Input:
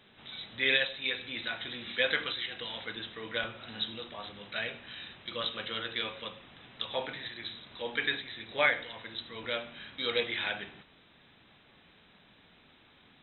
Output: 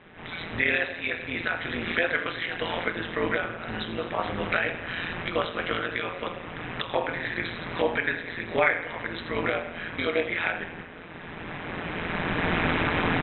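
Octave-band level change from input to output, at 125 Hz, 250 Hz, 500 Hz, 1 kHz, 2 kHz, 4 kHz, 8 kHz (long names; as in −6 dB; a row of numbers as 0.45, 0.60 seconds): +16.0 dB, +14.0 dB, +8.5 dB, +11.5 dB, +7.0 dB, −2.0 dB, can't be measured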